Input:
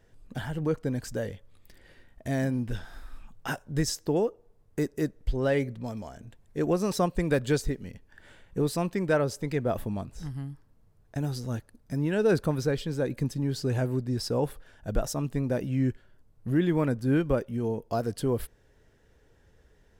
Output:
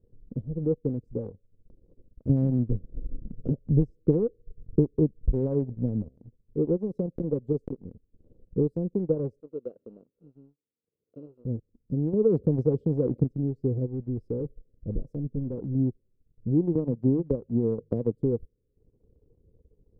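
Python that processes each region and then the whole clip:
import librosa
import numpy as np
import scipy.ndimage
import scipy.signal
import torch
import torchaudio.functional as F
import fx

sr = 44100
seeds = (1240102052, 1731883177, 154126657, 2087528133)

y = fx.chain(x, sr, fx.low_shelf(hz=190.0, db=7.5),
    fx.band_squash(depth_pct=70), at=(2.29, 6.09))
y = fx.chain(y, sr, fx.peak_eq(hz=75.0, db=-7.5, octaves=0.65),
    fx.transformer_sat(knee_hz=630.0), at=(6.77, 7.85))
y = fx.chain(y, sr, fx.sample_sort(block=32),
    fx.bandpass_edges(low_hz=530.0, high_hz=2200.0), at=(9.4, 11.45))
y = fx.chain(y, sr, fx.highpass(hz=61.0, slope=24),
    fx.env_flatten(amount_pct=50), at=(12.13, 13.24))
y = fx.chain(y, sr, fx.clip_hard(threshold_db=-27.5),
    fx.low_shelf(hz=63.0, db=4.0), at=(13.86, 15.75))
y = fx.chain(y, sr, fx.highpass(hz=48.0, slope=6),
    fx.hum_notches(base_hz=50, count=3),
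    fx.band_squash(depth_pct=100), at=(16.75, 18.15))
y = scipy.signal.sosfilt(scipy.signal.ellip(4, 1.0, 40, 500.0, 'lowpass', fs=sr, output='sos'), y)
y = fx.transient(y, sr, attack_db=5, sustain_db=-12)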